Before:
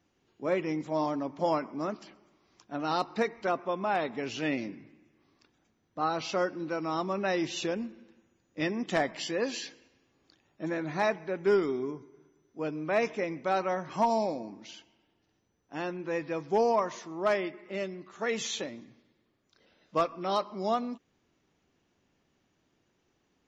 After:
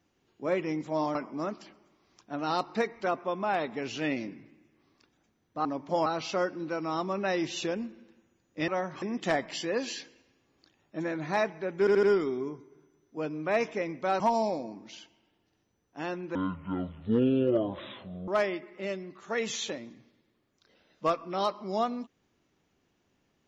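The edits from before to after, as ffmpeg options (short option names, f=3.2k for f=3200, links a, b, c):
-filter_complex "[0:a]asplit=12[a][b][c][d][e][f][g][h][i][j][k][l];[a]atrim=end=1.152[m];[b]atrim=start=1.558:end=6.062[n];[c]atrim=start=1.148:end=1.562[o];[d]atrim=start=6.058:end=8.682[p];[e]atrim=start=13.618:end=13.962[q];[f]atrim=start=8.678:end=11.532[r];[g]atrim=start=11.448:end=11.532[s];[h]atrim=start=11.448:end=11.532[t];[i]atrim=start=11.448:end=13.622[u];[j]atrim=start=13.958:end=16.114[v];[k]atrim=start=16.11:end=17.19,asetpts=PTS-STARTPTS,asetrate=24696,aresample=44100[w];[l]atrim=start=17.186[x];[m][n]acrossfade=d=0.004:c1=hsin:c2=hsin[y];[y][o]acrossfade=d=0.004:c1=hsin:c2=hsin[z];[z][p]acrossfade=d=0.004:c1=hsin:c2=hsin[aa];[aa][q]acrossfade=d=0.004:c1=hsin:c2=hsin[ab];[ab][r]acrossfade=d=0.004:c1=hsin:c2=hsin[ac];[ac][s]acrossfade=d=0.004:c1=hsin:c2=hsin[ad];[ad][t]acrossfade=d=0.004:c1=hsin:c2=hsin[ae];[ae][u]acrossfade=d=0.004:c1=hsin:c2=hsin[af];[af][v]acrossfade=d=0.004:c1=hsin:c2=hsin[ag];[ag][w]acrossfade=d=0.004:c1=hsin:c2=hsin[ah];[ah][x]acrossfade=d=0.004:c1=hsin:c2=hsin"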